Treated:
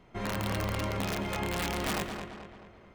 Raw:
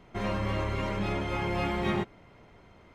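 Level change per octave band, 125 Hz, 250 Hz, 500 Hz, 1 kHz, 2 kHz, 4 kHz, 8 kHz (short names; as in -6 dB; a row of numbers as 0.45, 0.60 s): -2.5, -2.5, -3.0, -1.5, -0.5, +3.0, +12.5 dB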